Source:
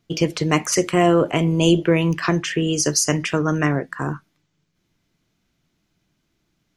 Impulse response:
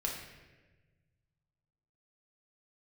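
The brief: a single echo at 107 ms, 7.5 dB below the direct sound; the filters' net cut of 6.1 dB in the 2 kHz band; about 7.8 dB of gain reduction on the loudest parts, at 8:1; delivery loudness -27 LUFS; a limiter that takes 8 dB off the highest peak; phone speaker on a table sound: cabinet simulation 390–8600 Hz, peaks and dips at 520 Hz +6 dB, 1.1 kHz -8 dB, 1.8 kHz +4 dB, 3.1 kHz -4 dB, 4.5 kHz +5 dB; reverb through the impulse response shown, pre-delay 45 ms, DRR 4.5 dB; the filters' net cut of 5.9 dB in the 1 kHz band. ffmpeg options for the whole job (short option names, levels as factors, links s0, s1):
-filter_complex "[0:a]equalizer=f=1000:t=o:g=-6,equalizer=f=2000:t=o:g=-7.5,acompressor=threshold=0.1:ratio=8,alimiter=limit=0.126:level=0:latency=1,aecho=1:1:107:0.422,asplit=2[s0][s1];[1:a]atrim=start_sample=2205,adelay=45[s2];[s1][s2]afir=irnorm=-1:irlink=0,volume=0.422[s3];[s0][s3]amix=inputs=2:normalize=0,highpass=f=390:w=0.5412,highpass=f=390:w=1.3066,equalizer=f=520:t=q:w=4:g=6,equalizer=f=1100:t=q:w=4:g=-8,equalizer=f=1800:t=q:w=4:g=4,equalizer=f=3100:t=q:w=4:g=-4,equalizer=f=4500:t=q:w=4:g=5,lowpass=f=8600:w=0.5412,lowpass=f=8600:w=1.3066,volume=1.19"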